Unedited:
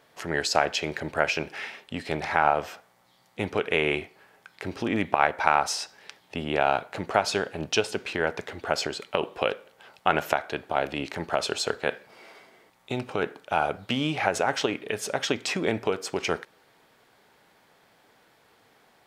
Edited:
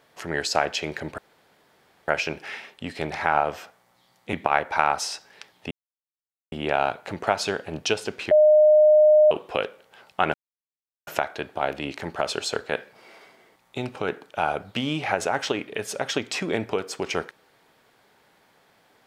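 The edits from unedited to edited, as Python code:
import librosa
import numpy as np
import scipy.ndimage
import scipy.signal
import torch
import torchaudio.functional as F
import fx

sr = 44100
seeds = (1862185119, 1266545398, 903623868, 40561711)

y = fx.edit(x, sr, fx.insert_room_tone(at_s=1.18, length_s=0.9),
    fx.cut(start_s=3.43, length_s=1.58),
    fx.insert_silence(at_s=6.39, length_s=0.81),
    fx.bleep(start_s=8.18, length_s=1.0, hz=610.0, db=-11.5),
    fx.insert_silence(at_s=10.21, length_s=0.73), tone=tone)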